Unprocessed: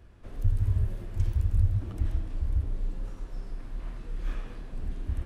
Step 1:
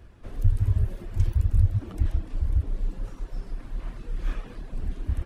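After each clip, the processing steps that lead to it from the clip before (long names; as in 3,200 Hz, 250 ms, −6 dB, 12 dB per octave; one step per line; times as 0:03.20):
reverb reduction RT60 0.59 s
level +4.5 dB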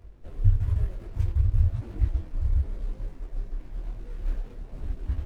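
running median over 41 samples
parametric band 200 Hz −6 dB 1.9 octaves
micro pitch shift up and down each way 35 cents
level +5 dB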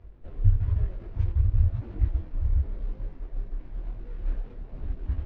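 high-frequency loss of the air 210 metres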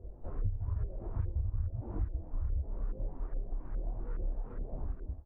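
fade-out on the ending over 0.58 s
downward compressor 5 to 1, threshold −32 dBFS, peak gain reduction 17.5 dB
auto-filter low-pass saw up 2.4 Hz 460–1,500 Hz
level +1 dB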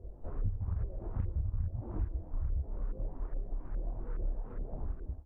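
slap from a distant wall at 26 metres, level −19 dB
highs frequency-modulated by the lows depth 0.83 ms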